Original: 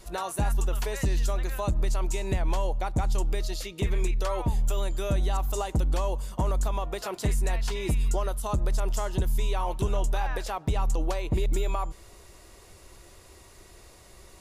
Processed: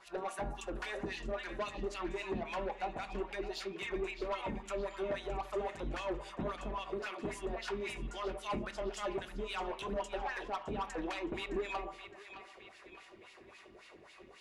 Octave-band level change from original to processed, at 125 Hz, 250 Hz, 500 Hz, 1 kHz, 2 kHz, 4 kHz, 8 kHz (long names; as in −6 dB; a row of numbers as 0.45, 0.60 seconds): −20.0, −6.5, −5.0, −6.5, −2.5, −6.0, −15.5 decibels